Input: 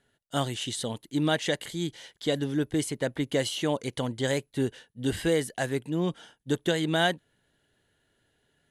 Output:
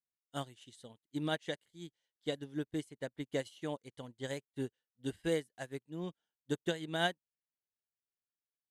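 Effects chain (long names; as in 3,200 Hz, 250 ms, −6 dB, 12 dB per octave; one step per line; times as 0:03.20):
expander for the loud parts 2.5 to 1, over −43 dBFS
level −6 dB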